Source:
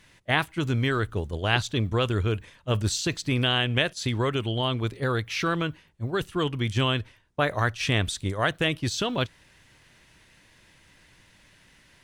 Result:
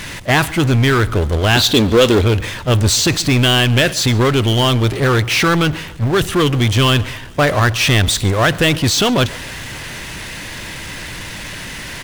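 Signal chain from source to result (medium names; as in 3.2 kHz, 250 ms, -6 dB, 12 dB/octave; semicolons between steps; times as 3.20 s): 1.57–2.25 s: graphic EQ 125/250/500/4000 Hz -9/+6/+8/+11 dB; power-law waveshaper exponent 0.5; feedback delay 139 ms, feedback 49%, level -21.5 dB; trim +2.5 dB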